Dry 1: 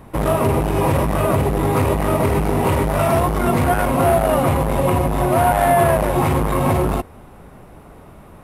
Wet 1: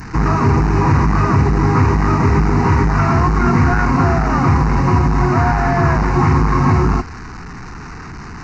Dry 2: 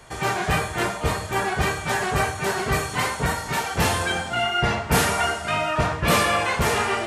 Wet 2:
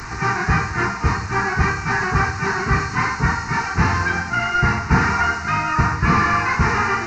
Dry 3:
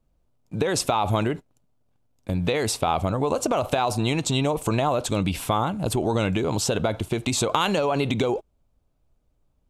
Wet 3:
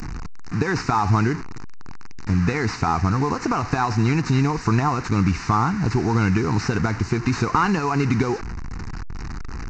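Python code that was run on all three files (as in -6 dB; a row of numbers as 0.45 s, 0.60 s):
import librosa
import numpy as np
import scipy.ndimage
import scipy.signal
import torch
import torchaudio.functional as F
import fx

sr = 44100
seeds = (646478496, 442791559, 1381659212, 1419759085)

y = fx.delta_mod(x, sr, bps=32000, step_db=-29.5)
y = fx.fixed_phaser(y, sr, hz=1400.0, stages=4)
y = y * librosa.db_to_amplitude(7.0)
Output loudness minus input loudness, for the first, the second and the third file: +3.0 LU, +3.5 LU, +2.5 LU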